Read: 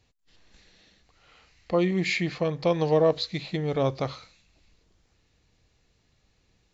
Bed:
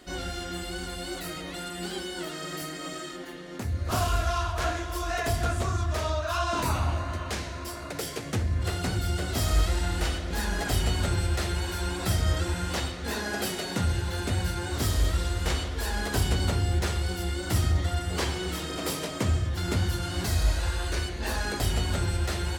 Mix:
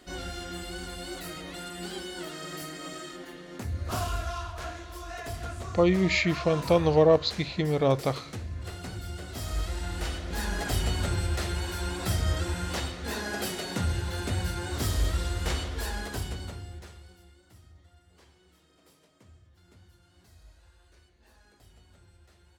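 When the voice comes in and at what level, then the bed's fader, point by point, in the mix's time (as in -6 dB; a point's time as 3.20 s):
4.05 s, +1.5 dB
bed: 3.82 s -3 dB
4.69 s -9.5 dB
9.33 s -9.5 dB
10.44 s -2 dB
15.82 s -2 dB
17.58 s -30.5 dB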